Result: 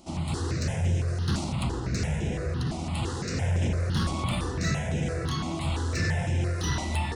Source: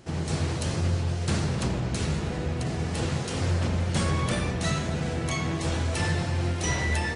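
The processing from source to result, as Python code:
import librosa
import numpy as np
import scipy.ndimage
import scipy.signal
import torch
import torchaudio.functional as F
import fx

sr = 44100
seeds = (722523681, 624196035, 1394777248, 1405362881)

y = 10.0 ** (-19.5 / 20.0) * np.tanh(x / 10.0 ** (-19.5 / 20.0))
y = fx.phaser_held(y, sr, hz=5.9, low_hz=450.0, high_hz=4400.0)
y = y * 10.0 ** (2.5 / 20.0)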